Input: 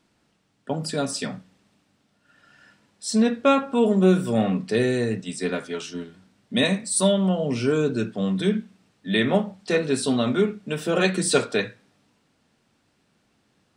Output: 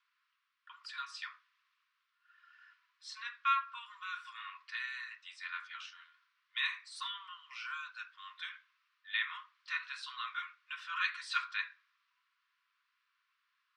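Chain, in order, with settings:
Chebyshev high-pass filter 1,000 Hz, order 10
high-frequency loss of the air 250 metres
level −4 dB

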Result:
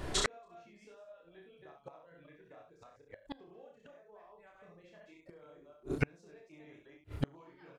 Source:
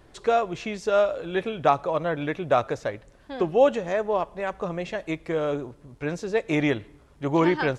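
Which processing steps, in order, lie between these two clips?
delay that plays each chunk backwards 151 ms, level −1 dB
reverb reduction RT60 1.7 s
downward compressor 6 to 1, threshold −28 dBFS, peak gain reduction 15 dB
double-tracking delay 29 ms −2.5 dB
ambience of single reflections 26 ms −11.5 dB, 66 ms −5 dB
gate with flip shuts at −26 dBFS, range −39 dB
level +10.5 dB

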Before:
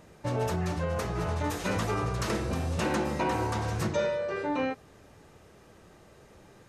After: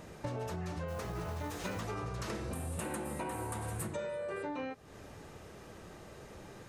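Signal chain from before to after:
0:02.53–0:04.43: high shelf with overshoot 7,300 Hz +10 dB, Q 3
downward compressor 6 to 1, threshold −41 dBFS, peak gain reduction 16 dB
0:00.88–0:01.81: log-companded quantiser 6 bits
level +4 dB

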